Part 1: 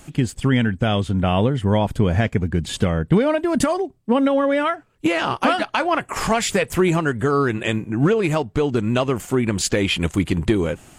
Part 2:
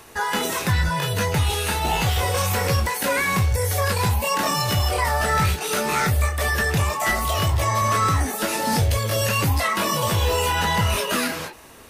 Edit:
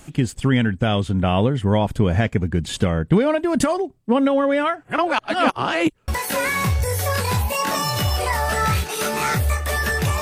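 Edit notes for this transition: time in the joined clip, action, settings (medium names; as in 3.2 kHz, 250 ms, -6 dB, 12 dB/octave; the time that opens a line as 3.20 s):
part 1
4.85–6.08 s: reverse
6.08 s: go over to part 2 from 2.80 s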